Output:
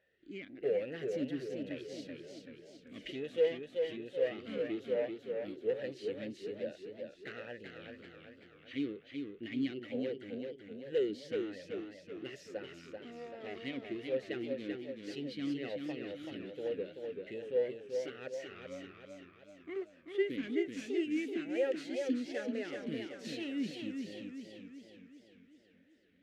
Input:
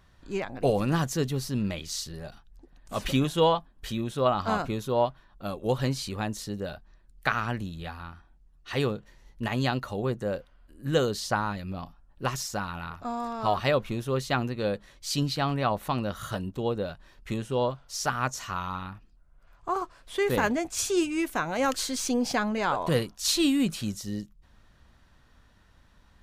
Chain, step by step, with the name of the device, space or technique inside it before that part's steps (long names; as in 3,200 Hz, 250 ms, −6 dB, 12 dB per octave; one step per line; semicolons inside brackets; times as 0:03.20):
0:10.21–0:10.92: parametric band 500 Hz −12 dB 1.9 octaves
talk box (tube saturation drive 23 dB, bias 0.4; formant filter swept between two vowels e-i 1.2 Hz)
feedback echo with a swinging delay time 384 ms, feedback 53%, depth 91 cents, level −5 dB
level +2.5 dB